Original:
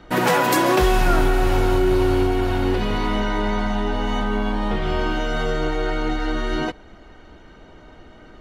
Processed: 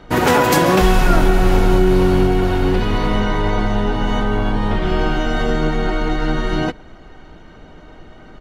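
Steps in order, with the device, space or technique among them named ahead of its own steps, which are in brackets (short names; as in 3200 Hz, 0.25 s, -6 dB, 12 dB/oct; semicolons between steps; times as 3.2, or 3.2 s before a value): octave pedal (harmoniser -12 st -3 dB); gain +2.5 dB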